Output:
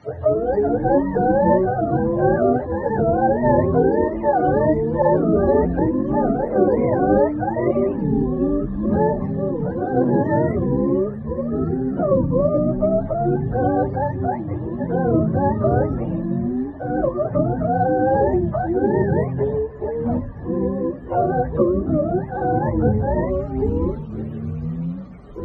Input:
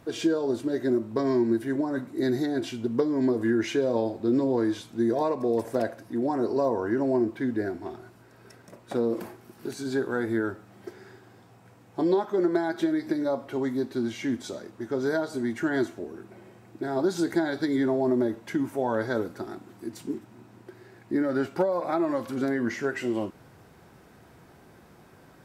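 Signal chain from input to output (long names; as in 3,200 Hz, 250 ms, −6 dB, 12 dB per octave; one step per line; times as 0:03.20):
frequency axis turned over on the octave scale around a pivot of 450 Hz
0:05.02–0:05.79: all-pass dispersion lows, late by 56 ms, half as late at 910 Hz
delay with pitch and tempo change per echo 185 ms, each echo −7 semitones, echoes 3
level +7.5 dB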